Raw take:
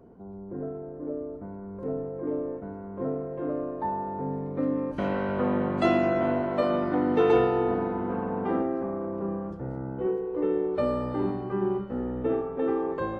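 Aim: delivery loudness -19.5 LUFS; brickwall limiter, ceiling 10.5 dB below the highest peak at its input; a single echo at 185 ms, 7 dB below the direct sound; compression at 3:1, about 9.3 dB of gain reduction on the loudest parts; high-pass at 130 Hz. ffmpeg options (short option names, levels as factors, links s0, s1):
-af "highpass=130,acompressor=threshold=0.0316:ratio=3,alimiter=level_in=1.68:limit=0.0631:level=0:latency=1,volume=0.596,aecho=1:1:185:0.447,volume=6.68"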